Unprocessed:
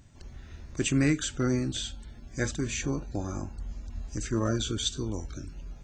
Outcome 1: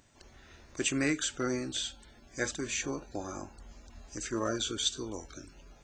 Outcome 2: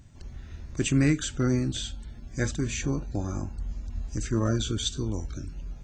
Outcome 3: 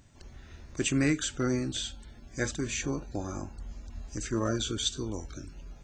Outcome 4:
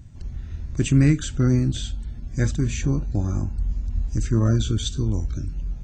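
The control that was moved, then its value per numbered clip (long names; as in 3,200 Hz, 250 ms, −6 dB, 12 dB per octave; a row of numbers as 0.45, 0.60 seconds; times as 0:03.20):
bass and treble, bass: −14, +4, −4, +13 decibels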